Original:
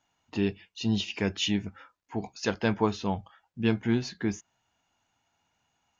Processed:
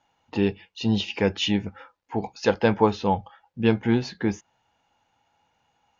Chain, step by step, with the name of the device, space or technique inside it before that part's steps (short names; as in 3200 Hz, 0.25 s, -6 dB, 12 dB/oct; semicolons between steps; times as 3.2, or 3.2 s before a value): inside a cardboard box (LPF 5100 Hz 12 dB/oct; small resonant body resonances 510/830 Hz, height 9 dB, ringing for 35 ms); gain +4 dB